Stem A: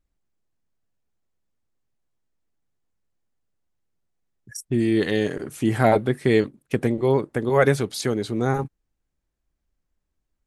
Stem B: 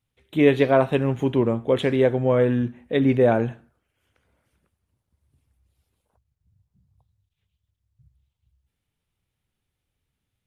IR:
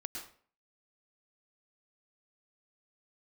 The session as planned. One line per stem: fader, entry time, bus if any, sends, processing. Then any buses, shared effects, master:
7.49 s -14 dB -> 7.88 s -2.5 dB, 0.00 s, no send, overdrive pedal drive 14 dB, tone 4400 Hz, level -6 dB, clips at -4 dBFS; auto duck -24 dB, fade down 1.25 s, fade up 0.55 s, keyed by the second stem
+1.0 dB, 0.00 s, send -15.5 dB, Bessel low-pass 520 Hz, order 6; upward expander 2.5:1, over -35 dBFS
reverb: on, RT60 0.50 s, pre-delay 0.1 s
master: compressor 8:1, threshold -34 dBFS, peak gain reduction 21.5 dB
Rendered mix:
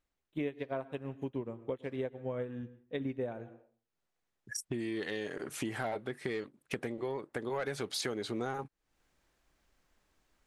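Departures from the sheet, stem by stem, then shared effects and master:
stem A -14.0 dB -> -5.5 dB; stem B: missing Bessel low-pass 520 Hz, order 6

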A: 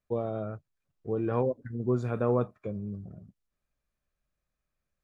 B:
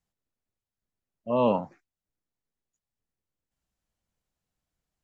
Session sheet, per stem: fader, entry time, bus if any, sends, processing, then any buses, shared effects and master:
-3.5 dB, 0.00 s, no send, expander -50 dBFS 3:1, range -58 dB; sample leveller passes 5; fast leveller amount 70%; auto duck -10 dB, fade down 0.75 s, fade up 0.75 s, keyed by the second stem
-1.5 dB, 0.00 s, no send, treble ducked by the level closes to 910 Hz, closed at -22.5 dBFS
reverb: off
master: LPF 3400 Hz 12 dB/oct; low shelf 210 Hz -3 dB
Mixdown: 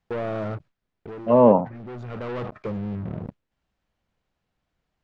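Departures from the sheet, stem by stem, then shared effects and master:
stem A -3.5 dB -> -10.0 dB; stem B -1.5 dB -> +10.0 dB

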